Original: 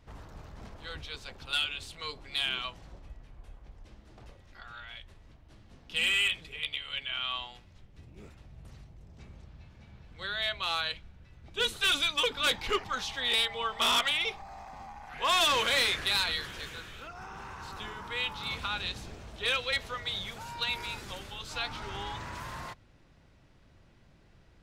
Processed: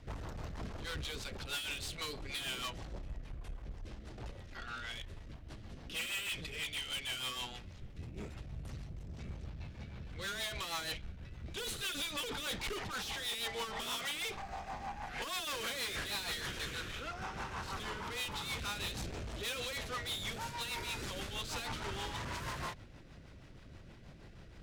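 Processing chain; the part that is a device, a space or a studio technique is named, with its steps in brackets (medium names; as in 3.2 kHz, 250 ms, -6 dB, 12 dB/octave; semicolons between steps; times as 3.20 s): overdriven rotary cabinet (valve stage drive 45 dB, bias 0.4; rotary cabinet horn 6.3 Hz); trim +9.5 dB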